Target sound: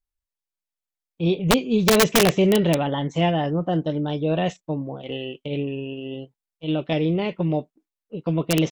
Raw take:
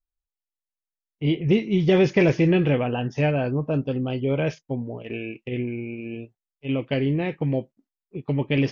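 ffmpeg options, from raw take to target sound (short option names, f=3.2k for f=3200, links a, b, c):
-af "asetrate=50951,aresample=44100,atempo=0.865537,aeval=exprs='(mod(3.35*val(0)+1,2)-1)/3.35':c=same,volume=1dB"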